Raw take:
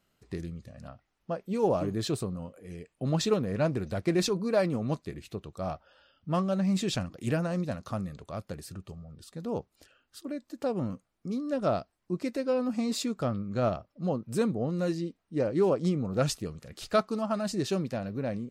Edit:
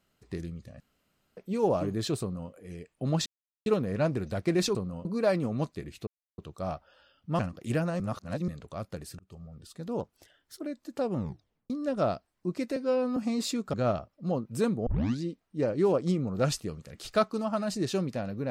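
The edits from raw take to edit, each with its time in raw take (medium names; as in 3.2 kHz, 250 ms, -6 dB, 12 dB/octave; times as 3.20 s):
0.80–1.37 s: room tone
2.21–2.51 s: copy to 4.35 s
3.26 s: insert silence 0.40 s
5.37 s: insert silence 0.31 s
6.38–6.96 s: delete
7.57–8.05 s: reverse
8.76–9.02 s: fade in
9.57–10.31 s: speed 112%
10.82 s: tape stop 0.53 s
12.41–12.68 s: stretch 1.5×
13.25–13.51 s: delete
14.64 s: tape start 0.35 s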